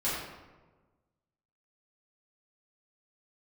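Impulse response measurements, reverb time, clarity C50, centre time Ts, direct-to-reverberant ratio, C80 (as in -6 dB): 1.3 s, -0.5 dB, 77 ms, -11.0 dB, 2.0 dB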